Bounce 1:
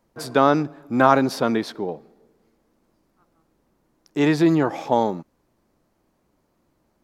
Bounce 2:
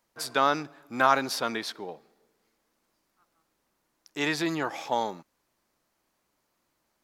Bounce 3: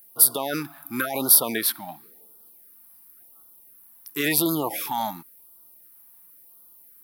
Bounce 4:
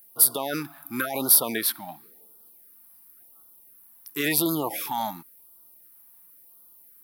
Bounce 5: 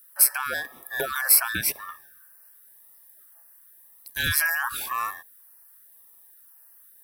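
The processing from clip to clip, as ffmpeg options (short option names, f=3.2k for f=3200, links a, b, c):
-af "tiltshelf=f=790:g=-8.5,volume=-7dB"
-af "alimiter=limit=-19dB:level=0:latency=1:release=17,aexciter=amount=12.7:drive=8.9:freq=10k,afftfilt=real='re*(1-between(b*sr/1024,410*pow(2200/410,0.5+0.5*sin(2*PI*0.94*pts/sr))/1.41,410*pow(2200/410,0.5+0.5*sin(2*PI*0.94*pts/sr))*1.41))':imag='im*(1-between(b*sr/1024,410*pow(2200/410,0.5+0.5*sin(2*PI*0.94*pts/sr))/1.41,410*pow(2200/410,0.5+0.5*sin(2*PI*0.94*pts/sr))*1.41))':win_size=1024:overlap=0.75,volume=5.5dB"
-af "asoftclip=type=hard:threshold=-6dB,volume=-1.5dB"
-af "afftfilt=real='real(if(between(b,1,1012),(2*floor((b-1)/92)+1)*92-b,b),0)':imag='imag(if(between(b,1,1012),(2*floor((b-1)/92)+1)*92-b,b),0)*if(between(b,1,1012),-1,1)':win_size=2048:overlap=0.75"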